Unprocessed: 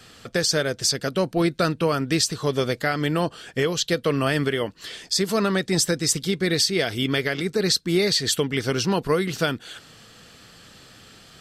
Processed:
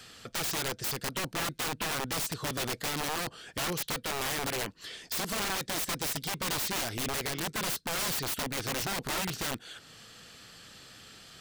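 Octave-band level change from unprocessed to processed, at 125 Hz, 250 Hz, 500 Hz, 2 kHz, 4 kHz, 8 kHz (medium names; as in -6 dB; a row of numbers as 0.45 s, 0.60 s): -13.0 dB, -15.0 dB, -15.5 dB, -7.5 dB, -9.0 dB, -7.0 dB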